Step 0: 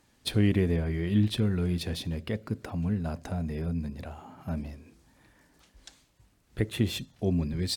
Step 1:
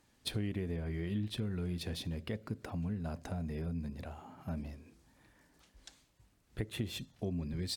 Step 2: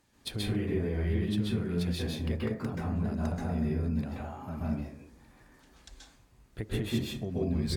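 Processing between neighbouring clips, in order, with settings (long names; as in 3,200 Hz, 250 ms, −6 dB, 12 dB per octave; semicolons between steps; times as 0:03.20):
downward compressor 4 to 1, threshold −29 dBFS, peak gain reduction 9.5 dB; level −4.5 dB
dense smooth reverb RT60 0.58 s, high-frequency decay 0.4×, pre-delay 120 ms, DRR −5.5 dB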